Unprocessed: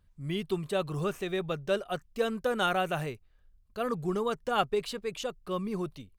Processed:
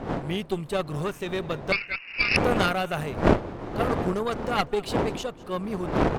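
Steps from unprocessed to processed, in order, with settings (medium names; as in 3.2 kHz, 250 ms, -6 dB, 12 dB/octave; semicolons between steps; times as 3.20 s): wind noise 540 Hz -32 dBFS; 1.72–2.37 s: frequency inversion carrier 2.8 kHz; delay 201 ms -21 dB; Chebyshev shaper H 4 -9 dB, 6 -27 dB, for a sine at -9.5 dBFS; trim +2 dB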